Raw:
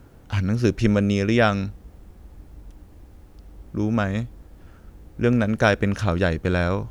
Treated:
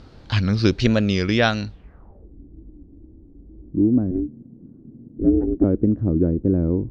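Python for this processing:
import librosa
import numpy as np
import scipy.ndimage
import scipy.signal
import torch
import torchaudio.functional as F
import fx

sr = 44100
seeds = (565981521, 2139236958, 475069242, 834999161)

y = fx.wow_flutter(x, sr, seeds[0], rate_hz=2.1, depth_cents=130.0)
y = fx.ring_mod(y, sr, carrier_hz=180.0, at=(4.11, 5.64))
y = fx.filter_sweep_lowpass(y, sr, from_hz=4400.0, to_hz=310.0, start_s=1.7, end_s=2.32, q=3.7)
y = fx.rider(y, sr, range_db=5, speed_s=2.0)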